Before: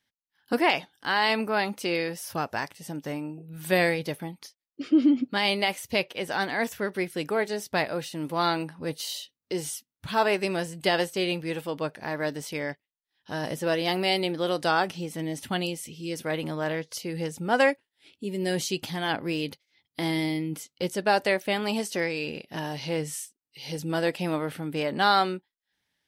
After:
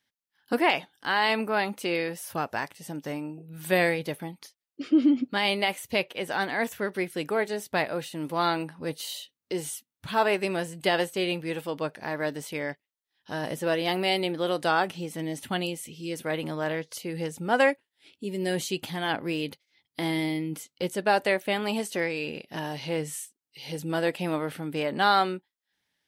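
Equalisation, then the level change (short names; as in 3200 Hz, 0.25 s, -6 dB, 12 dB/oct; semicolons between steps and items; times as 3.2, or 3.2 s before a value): dynamic EQ 5300 Hz, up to -7 dB, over -51 dBFS, Q 2.6; low shelf 95 Hz -6 dB; 0.0 dB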